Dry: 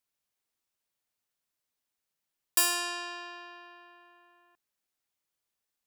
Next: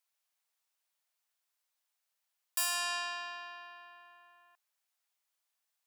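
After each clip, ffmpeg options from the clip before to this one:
-af "highpass=f=610:w=0.5412,highpass=f=610:w=1.3066,alimiter=limit=0.075:level=0:latency=1:release=303,volume=1.19"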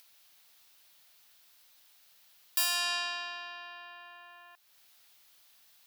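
-filter_complex "[0:a]equalizer=f=500:t=o:w=1:g=-4,equalizer=f=1000:t=o:w=1:g=-5,equalizer=f=2000:t=o:w=1:g=-3,equalizer=f=4000:t=o:w=1:g=3,equalizer=f=8000:t=o:w=1:g=-7,asplit=2[s0][s1];[s1]acompressor=mode=upward:threshold=0.00708:ratio=2.5,volume=1[s2];[s0][s2]amix=inputs=2:normalize=0"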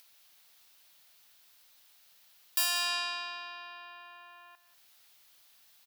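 -af "aecho=1:1:191:0.168"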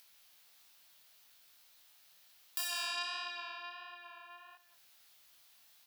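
-af "acompressor=threshold=0.0178:ratio=2.5,flanger=delay=19.5:depth=6.3:speed=1.5,volume=1.19"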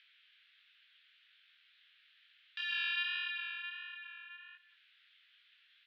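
-af "asuperpass=centerf=2300:order=8:qfactor=1.1,volume=2"

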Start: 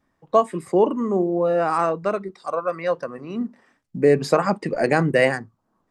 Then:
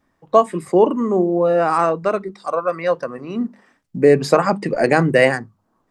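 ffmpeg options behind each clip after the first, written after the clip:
-af "bandreject=f=50:t=h:w=6,bandreject=f=100:t=h:w=6,bandreject=f=150:t=h:w=6,bandreject=f=200:t=h:w=6,volume=1.58"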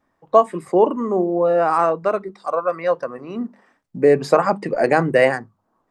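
-af "equalizer=f=790:w=0.51:g=6.5,volume=0.501"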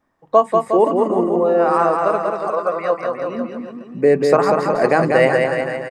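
-af "aecho=1:1:190|361|514.9|653.4|778.1:0.631|0.398|0.251|0.158|0.1"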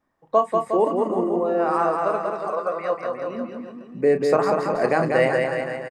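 -filter_complex "[0:a]asplit=2[s0][s1];[s1]adelay=32,volume=0.266[s2];[s0][s2]amix=inputs=2:normalize=0,volume=0.531"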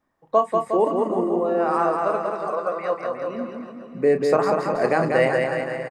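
-af "aecho=1:1:576|1152|1728:0.141|0.0438|0.0136"

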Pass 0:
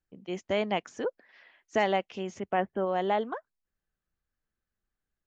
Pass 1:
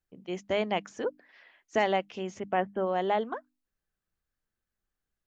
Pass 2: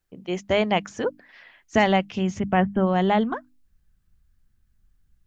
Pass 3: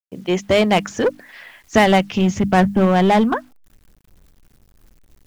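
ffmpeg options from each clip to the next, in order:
-af "bandreject=f=50:t=h:w=6,bandreject=f=100:t=h:w=6,bandreject=f=150:t=h:w=6,bandreject=f=200:t=h:w=6,bandreject=f=250:t=h:w=6,bandreject=f=300:t=h:w=6"
-af "asubboost=boost=10.5:cutoff=160,volume=2.51"
-filter_complex "[0:a]asplit=2[s0][s1];[s1]aeval=exprs='0.0794*(abs(mod(val(0)/0.0794+3,4)-2)-1)':c=same,volume=0.531[s2];[s0][s2]amix=inputs=2:normalize=0,acrusher=bits=9:mix=0:aa=0.000001,volume=1.88"

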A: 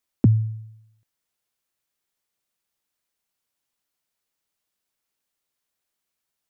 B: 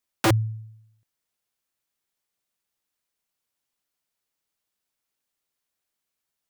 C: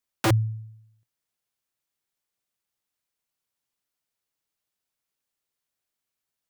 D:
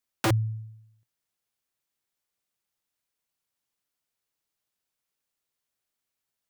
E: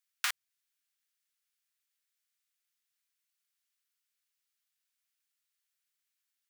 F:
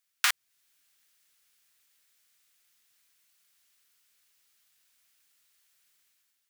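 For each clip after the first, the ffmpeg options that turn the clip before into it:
-af "aeval=exprs='(mod(4.47*val(0)+1,2)-1)/4.47':c=same,volume=0.841"
-af "equalizer=f=120:t=o:w=0.37:g=4.5,volume=0.75"
-af "acompressor=threshold=0.0501:ratio=1.5"
-af "highpass=f=1400:w=0.5412,highpass=f=1400:w=1.3066"
-af "dynaudnorm=f=110:g=9:m=2.82,volume=2"

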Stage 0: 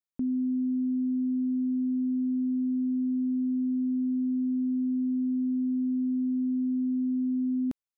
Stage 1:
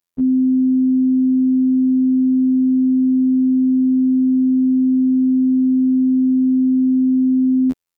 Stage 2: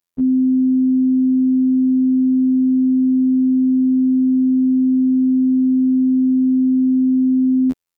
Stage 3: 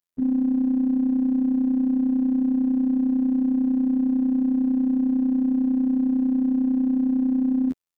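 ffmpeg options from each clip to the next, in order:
-af "afftfilt=real='hypot(re,im)*cos(PI*b)':imag='0':win_size=2048:overlap=0.75,acontrast=45,volume=2.37"
-af anull
-filter_complex "[0:a]tremolo=f=31:d=0.571,asplit=2[s0][s1];[s1]aeval=exprs='clip(val(0),-1,0.15)':c=same,volume=0.531[s2];[s0][s2]amix=inputs=2:normalize=0,volume=0.422"

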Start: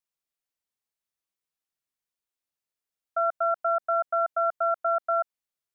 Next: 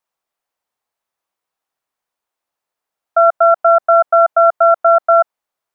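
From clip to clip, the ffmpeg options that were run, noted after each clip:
-af "equalizer=f=840:t=o:w=2.2:g=13.5,volume=1.58"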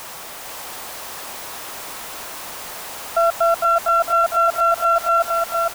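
-filter_complex "[0:a]aeval=exprs='val(0)+0.5*0.0944*sgn(val(0))':c=same,asplit=2[s0][s1];[s1]aecho=0:1:456|912|1368|1824|2280|2736:0.708|0.311|0.137|0.0603|0.0265|0.0117[s2];[s0][s2]amix=inputs=2:normalize=0,volume=0.422"

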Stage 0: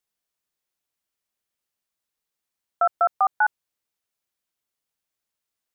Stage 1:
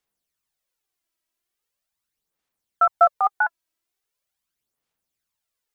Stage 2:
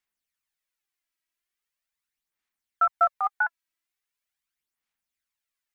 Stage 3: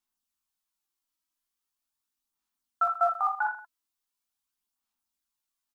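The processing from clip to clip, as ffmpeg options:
-af "aphaser=in_gain=1:out_gain=1:delay=3.1:decay=0.54:speed=0.41:type=sinusoidal"
-af "equalizer=f=125:t=o:w=1:g=-8,equalizer=f=500:t=o:w=1:g=-8,equalizer=f=2000:t=o:w=1:g=6,volume=0.531"
-af "equalizer=f=125:t=o:w=1:g=-11,equalizer=f=250:t=o:w=1:g=7,equalizer=f=500:t=o:w=1:g=-10,equalizer=f=1000:t=o:w=1:g=5,equalizer=f=2000:t=o:w=1:g=-12,aecho=1:1:20|46|79.8|123.7|180.9:0.631|0.398|0.251|0.158|0.1"

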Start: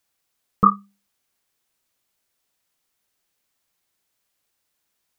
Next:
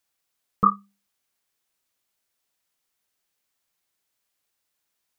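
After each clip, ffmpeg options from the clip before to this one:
-af "lowshelf=f=470:g=-3,volume=0.708"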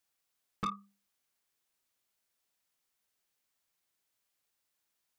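-af "acompressor=threshold=0.0794:ratio=3,asoftclip=type=tanh:threshold=0.0562,volume=0.631"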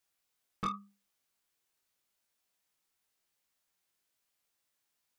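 -af "flanger=delay=18.5:depth=3.2:speed=0.9,volume=1.5"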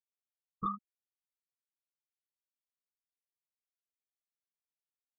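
-filter_complex "[0:a]asplit=2[s0][s1];[s1]adelay=24,volume=0.282[s2];[s0][s2]amix=inputs=2:normalize=0,afftfilt=real='re*gte(hypot(re,im),0.0447)':imag='im*gte(hypot(re,im),0.0447)':win_size=1024:overlap=0.75,asuperstop=centerf=1600:order=4:qfactor=2.9,volume=1.12"

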